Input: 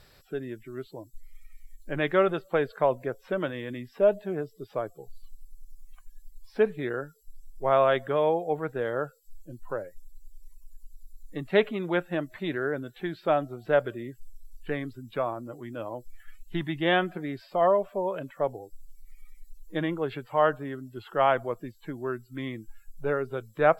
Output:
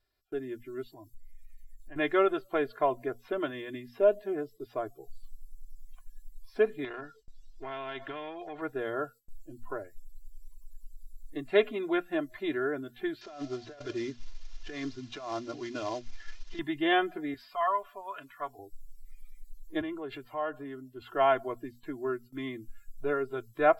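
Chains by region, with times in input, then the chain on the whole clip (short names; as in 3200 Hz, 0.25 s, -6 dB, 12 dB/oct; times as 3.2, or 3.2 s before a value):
0.83–1.96 comb 1.1 ms, depth 66% + compressor 2.5:1, threshold -45 dBFS
6.84–8.62 compressor 3:1, threshold -31 dBFS + air absorption 220 m + spectral compressor 2:1
13.21–16.59 CVSD 32 kbps + high shelf 2200 Hz +7 dB + negative-ratio compressor -35 dBFS
17.34–18.59 resonant low shelf 780 Hz -12 dB, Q 1.5 + notch 350 Hz, Q 5.6 + comb 7 ms, depth 41%
19.81–21.02 compressor 2:1, threshold -35 dBFS + three-band expander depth 40%
whole clip: notches 60/120/180/240 Hz; comb 2.9 ms, depth 82%; gate with hold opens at -42 dBFS; gain -4.5 dB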